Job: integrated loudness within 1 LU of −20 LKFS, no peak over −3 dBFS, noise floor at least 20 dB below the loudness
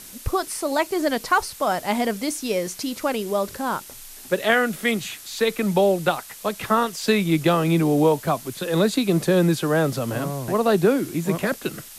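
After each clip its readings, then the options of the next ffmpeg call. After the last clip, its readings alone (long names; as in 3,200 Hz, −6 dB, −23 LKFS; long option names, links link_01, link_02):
background noise floor −42 dBFS; target noise floor −43 dBFS; integrated loudness −22.5 LKFS; sample peak −3.5 dBFS; target loudness −20.0 LKFS
→ -af "afftdn=noise_reduction=6:noise_floor=-42"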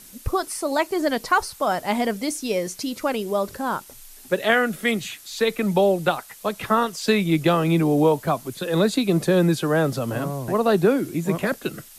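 background noise floor −46 dBFS; integrated loudness −22.5 LKFS; sample peak −3.5 dBFS; target loudness −20.0 LKFS
→ -af "volume=2.5dB,alimiter=limit=-3dB:level=0:latency=1"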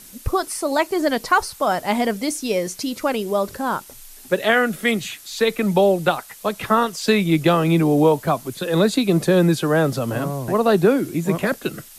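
integrated loudness −20.0 LKFS; sample peak −3.0 dBFS; background noise floor −43 dBFS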